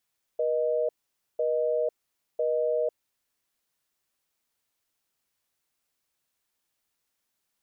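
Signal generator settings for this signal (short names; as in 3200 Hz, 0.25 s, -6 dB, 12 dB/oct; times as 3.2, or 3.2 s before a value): call progress tone busy tone, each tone -26 dBFS 2.98 s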